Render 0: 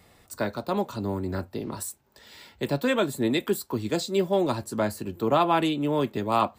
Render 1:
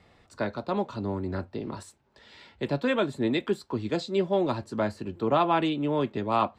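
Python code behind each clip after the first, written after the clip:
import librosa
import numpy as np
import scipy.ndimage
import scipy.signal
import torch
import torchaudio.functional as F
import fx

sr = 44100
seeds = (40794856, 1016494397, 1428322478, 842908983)

y = scipy.signal.sosfilt(scipy.signal.butter(2, 4200.0, 'lowpass', fs=sr, output='sos'), x)
y = y * librosa.db_to_amplitude(-1.5)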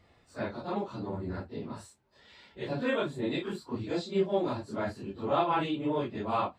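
y = fx.phase_scramble(x, sr, seeds[0], window_ms=100)
y = y * librosa.db_to_amplitude(-4.5)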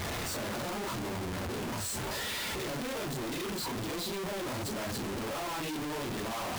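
y = np.sign(x) * np.sqrt(np.mean(np.square(x)))
y = y * librosa.db_to_amplitude(-2.5)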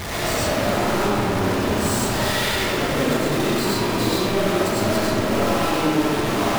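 y = fx.rev_freeverb(x, sr, rt60_s=2.7, hf_ratio=0.4, predelay_ms=55, drr_db=-8.0)
y = y * librosa.db_to_amplitude(6.0)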